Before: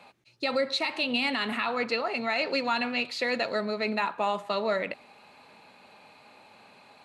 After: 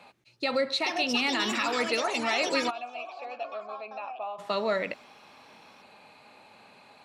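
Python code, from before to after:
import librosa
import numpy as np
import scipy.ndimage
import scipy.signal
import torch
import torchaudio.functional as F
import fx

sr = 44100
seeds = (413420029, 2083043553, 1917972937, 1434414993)

y = fx.echo_pitch(x, sr, ms=542, semitones=5, count=3, db_per_echo=-6.0)
y = fx.vowel_filter(y, sr, vowel='a', at=(2.69, 4.38), fade=0.02)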